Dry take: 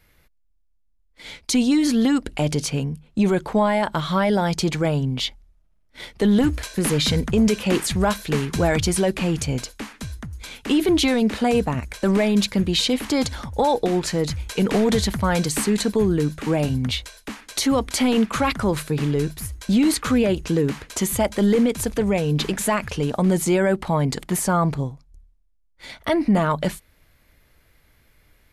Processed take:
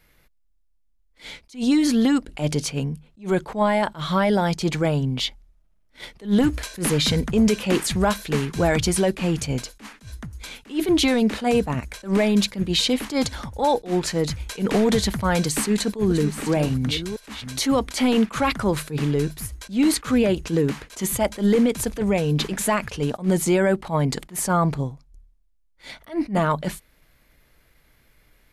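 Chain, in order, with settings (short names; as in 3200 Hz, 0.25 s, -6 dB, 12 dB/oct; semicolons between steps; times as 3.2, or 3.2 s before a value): 15.4–17.59 reverse delay 0.588 s, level -11 dB; bell 83 Hz -15 dB 0.22 oct; attack slew limiter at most 230 dB/s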